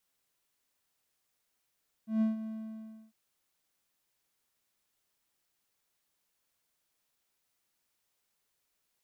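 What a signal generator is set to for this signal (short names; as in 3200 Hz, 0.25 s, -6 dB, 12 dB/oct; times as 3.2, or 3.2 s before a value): ADSR triangle 220 Hz, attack 0.143 s, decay 0.146 s, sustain -12.5 dB, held 0.39 s, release 0.662 s -21.5 dBFS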